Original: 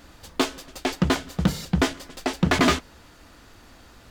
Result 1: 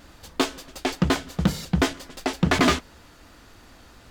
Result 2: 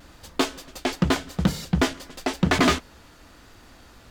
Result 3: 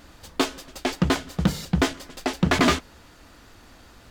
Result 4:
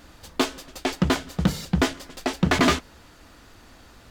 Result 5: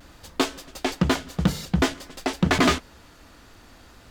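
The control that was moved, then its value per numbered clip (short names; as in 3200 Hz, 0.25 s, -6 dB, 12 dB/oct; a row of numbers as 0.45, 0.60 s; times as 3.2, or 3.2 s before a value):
vibrato, rate: 2.8, 0.91, 5.5, 14, 0.54 Hz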